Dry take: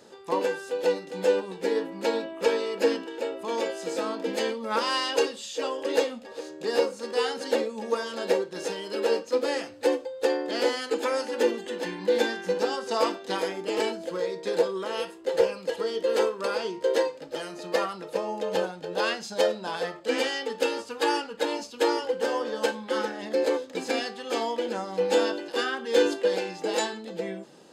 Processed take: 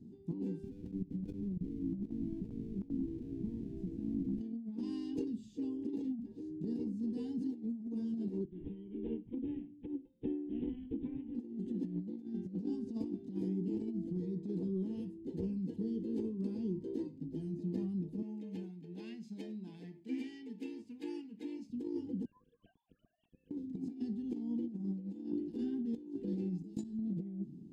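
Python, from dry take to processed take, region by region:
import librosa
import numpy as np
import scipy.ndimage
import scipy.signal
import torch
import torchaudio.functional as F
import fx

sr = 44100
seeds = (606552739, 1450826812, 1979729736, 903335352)

y = fx.chain(x, sr, fx.halfwave_hold(),
    fx.high_shelf(hz=8800.0, db=-12.0),
    fx.level_steps(step_db=19), at=(0.63, 4.41))
y = fx.chain(y, sr, fx.highpass(hz=230.0, slope=12),
    fx.resample_bad(factor=6, down='none', up='filtered'),
    fx.upward_expand(threshold_db=-33.0, expansion=1.5), at=(8.45, 11.35))
y = fx.chain(y, sr, fx.highpass(hz=780.0, slope=6),
    fx.peak_eq(hz=2200.0, db=12.0, octaves=0.65), at=(18.22, 21.7))
y = fx.chain(y, sr, fx.sine_speech(),
    fx.fixed_phaser(hz=2000.0, stages=6), at=(22.25, 23.51))
y = fx.chain(y, sr, fx.bass_treble(bass_db=9, treble_db=14),
    fx.level_steps(step_db=23), at=(26.58, 26.99))
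y = scipy.signal.sosfilt(scipy.signal.cheby2(4, 40, 500.0, 'lowpass', fs=sr, output='sos'), y)
y = fx.over_compress(y, sr, threshold_db=-45.0, ratio=-0.5)
y = y * 10.0 ** (8.5 / 20.0)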